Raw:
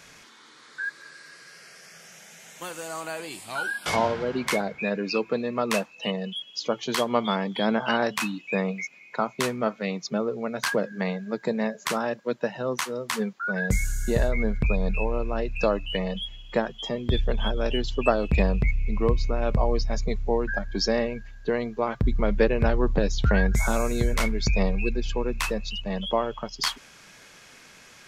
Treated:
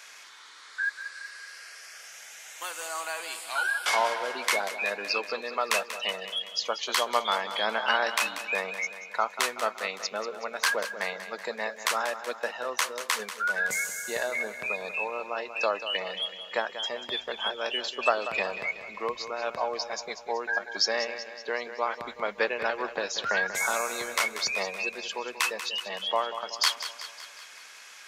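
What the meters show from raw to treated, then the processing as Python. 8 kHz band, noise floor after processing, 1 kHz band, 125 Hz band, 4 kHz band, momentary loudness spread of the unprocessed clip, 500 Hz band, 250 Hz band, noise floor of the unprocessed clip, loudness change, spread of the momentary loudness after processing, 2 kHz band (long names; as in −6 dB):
+3.0 dB, −48 dBFS, +0.5 dB, below −25 dB, +3.0 dB, 10 LU, −6.0 dB, −18.0 dB, −51 dBFS, −2.5 dB, 12 LU, +2.5 dB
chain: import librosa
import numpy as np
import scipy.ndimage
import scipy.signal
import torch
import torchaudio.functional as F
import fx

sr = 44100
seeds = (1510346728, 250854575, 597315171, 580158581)

p1 = scipy.signal.sosfilt(scipy.signal.butter(2, 840.0, 'highpass', fs=sr, output='sos'), x)
p2 = p1 + fx.echo_feedback(p1, sr, ms=188, feedback_pct=57, wet_db=-11.5, dry=0)
y = p2 * librosa.db_to_amplitude(2.5)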